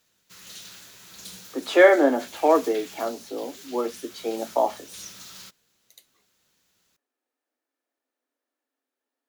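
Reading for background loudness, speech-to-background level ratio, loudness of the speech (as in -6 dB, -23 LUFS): -42.0 LUFS, 19.5 dB, -22.5 LUFS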